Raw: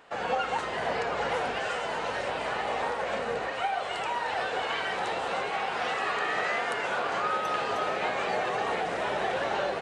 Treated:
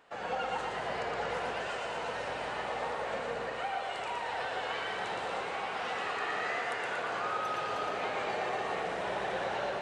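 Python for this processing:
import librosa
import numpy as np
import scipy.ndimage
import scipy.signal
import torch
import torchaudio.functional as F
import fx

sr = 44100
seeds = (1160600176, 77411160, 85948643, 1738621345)

y = fx.echo_feedback(x, sr, ms=117, feedback_pct=57, wet_db=-4)
y = F.gain(torch.from_numpy(y), -7.0).numpy()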